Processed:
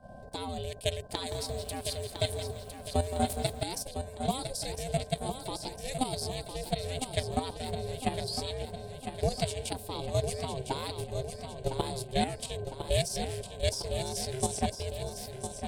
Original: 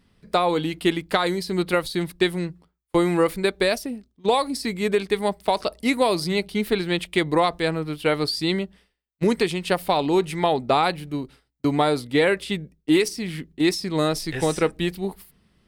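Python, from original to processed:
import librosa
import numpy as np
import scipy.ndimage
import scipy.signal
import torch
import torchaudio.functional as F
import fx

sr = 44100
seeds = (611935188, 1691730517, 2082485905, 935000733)

y = fx.graphic_eq_10(x, sr, hz=(125, 250, 1000, 2000, 8000), db=(7, -8, -12, -6, 9))
y = fx.dmg_noise_band(y, sr, seeds[0], low_hz=250.0, high_hz=490.0, level_db=-44.0)
y = scipy.signal.sosfilt(scipy.signal.butter(4, 79.0, 'highpass', fs=sr, output='sos'), y)
y = y + 10.0 ** (-48.0 / 20.0) * np.sin(2.0 * np.pi * 1300.0 * np.arange(len(y)) / sr)
y = fx.level_steps(y, sr, step_db=11)
y = fx.peak_eq(y, sr, hz=1500.0, db=-7.0, octaves=0.79)
y = y * np.sin(2.0 * np.pi * 260.0 * np.arange(len(y)) / sr)
y = fx.echo_feedback(y, sr, ms=1006, feedback_pct=51, wet_db=-8.0)
y = fx.echo_crushed(y, sr, ms=171, feedback_pct=35, bits=8, wet_db=-10.0, at=(0.99, 3.63))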